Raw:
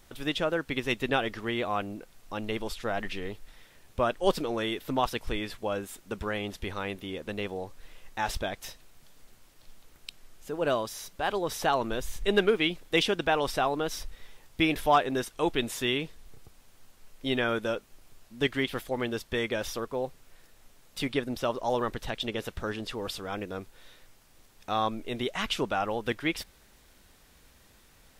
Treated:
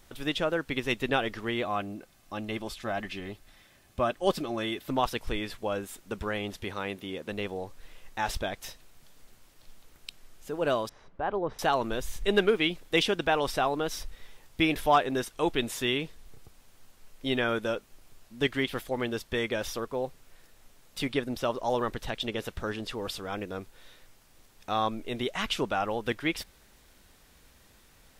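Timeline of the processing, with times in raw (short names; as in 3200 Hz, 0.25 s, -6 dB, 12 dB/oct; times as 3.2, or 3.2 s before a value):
1.63–4.9 notch comb 470 Hz
6.63–7.32 HPF 100 Hz
10.89–11.59 LPF 1300 Hz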